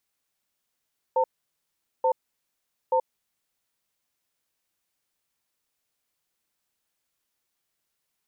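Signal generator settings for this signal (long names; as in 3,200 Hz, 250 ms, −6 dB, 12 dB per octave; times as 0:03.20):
tone pair in a cadence 517 Hz, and 901 Hz, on 0.08 s, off 0.80 s, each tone −21.5 dBFS 2.34 s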